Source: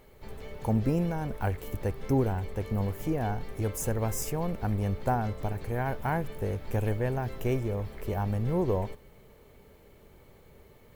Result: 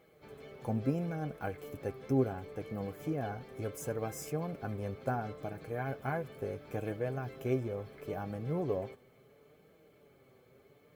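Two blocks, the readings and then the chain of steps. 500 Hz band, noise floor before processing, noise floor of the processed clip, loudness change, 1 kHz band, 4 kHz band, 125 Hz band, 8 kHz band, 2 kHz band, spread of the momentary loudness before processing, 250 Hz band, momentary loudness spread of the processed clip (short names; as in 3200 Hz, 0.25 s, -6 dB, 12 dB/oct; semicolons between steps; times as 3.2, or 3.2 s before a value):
-4.0 dB, -56 dBFS, -64 dBFS, -6.5 dB, -7.0 dB, -7.5 dB, -8.5 dB, -10.0 dB, -5.0 dB, 7 LU, -5.5 dB, 9 LU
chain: HPF 130 Hz 6 dB/oct; high shelf 4500 Hz -6 dB; notch comb 940 Hz; flange 0.72 Hz, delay 6.1 ms, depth 1.9 ms, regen +38%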